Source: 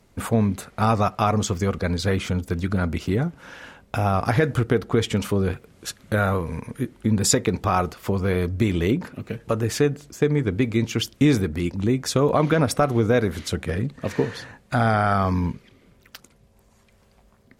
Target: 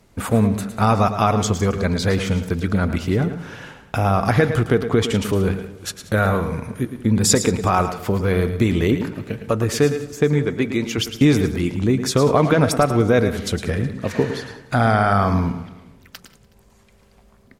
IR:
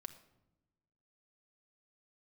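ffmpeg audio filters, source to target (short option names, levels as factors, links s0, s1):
-filter_complex "[0:a]asettb=1/sr,asplit=3[s0][s1][s2];[s0]atrim=end=10.454[s3];[s1]atrim=start=10.45:end=10.98,asetpts=PTS-STARTPTS,afade=t=in:d=0.004:c=qsin,afade=t=out:st=0.526:d=0.004:c=qsin,equalizer=f=84:w=0.67:g=-11.5[s4];[s2]atrim=start=10.976[s5];[s3][s4]acrossfade=d=0.004:c1=hsin:c2=qsin[s6];[s6][s5]acrossfade=d=0.004:c1=qsin:c2=hsin,aecho=1:1:185|370|555:0.112|0.0482|0.0207,asplit=2[s7][s8];[1:a]atrim=start_sample=2205,asetrate=48510,aresample=44100,adelay=109[s9];[s8][s9]afir=irnorm=-1:irlink=0,volume=0.631[s10];[s7][s10]amix=inputs=2:normalize=0,volume=1.41"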